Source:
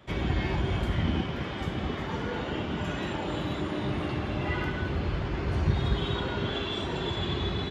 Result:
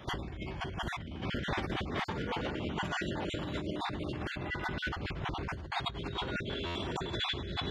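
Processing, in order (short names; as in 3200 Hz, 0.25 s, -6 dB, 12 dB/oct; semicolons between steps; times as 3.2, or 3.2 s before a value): random spectral dropouts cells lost 26%; negative-ratio compressor -37 dBFS, ratio -1; stuck buffer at 6.66, samples 512, times 7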